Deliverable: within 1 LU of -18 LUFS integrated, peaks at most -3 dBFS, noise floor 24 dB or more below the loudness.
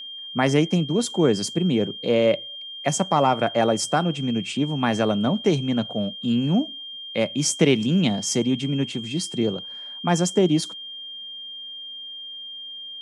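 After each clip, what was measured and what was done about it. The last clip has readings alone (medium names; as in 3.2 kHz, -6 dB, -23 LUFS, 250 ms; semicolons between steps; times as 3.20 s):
steady tone 3.2 kHz; tone level -34 dBFS; loudness -22.5 LUFS; peak level -5.0 dBFS; loudness target -18.0 LUFS
-> band-stop 3.2 kHz, Q 30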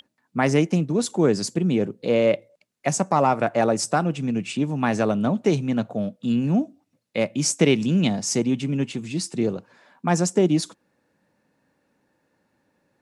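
steady tone not found; loudness -23.0 LUFS; peak level -5.0 dBFS; loudness target -18.0 LUFS
-> trim +5 dB; peak limiter -3 dBFS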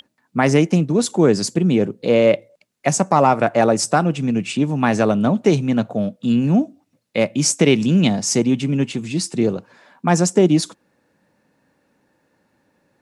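loudness -18.0 LUFS; peak level -3.0 dBFS; noise floor -67 dBFS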